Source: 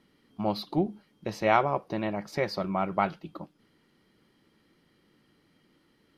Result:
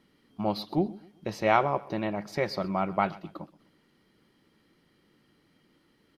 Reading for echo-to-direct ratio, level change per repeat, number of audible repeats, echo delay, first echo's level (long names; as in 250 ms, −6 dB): −20.5 dB, −8.5 dB, 2, 126 ms, −21.0 dB